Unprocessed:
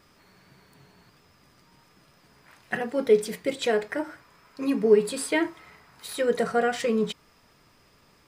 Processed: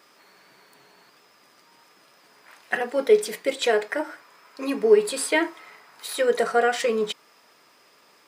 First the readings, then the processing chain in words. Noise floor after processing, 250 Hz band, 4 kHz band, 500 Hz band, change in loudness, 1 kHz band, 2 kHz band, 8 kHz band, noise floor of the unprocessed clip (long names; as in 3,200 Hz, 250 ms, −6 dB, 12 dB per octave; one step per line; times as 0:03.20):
−58 dBFS, −3.0 dB, +4.5 dB, +2.5 dB, +2.5 dB, +4.0 dB, +4.5 dB, +4.5 dB, −60 dBFS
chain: high-pass filter 390 Hz 12 dB per octave
level +4.5 dB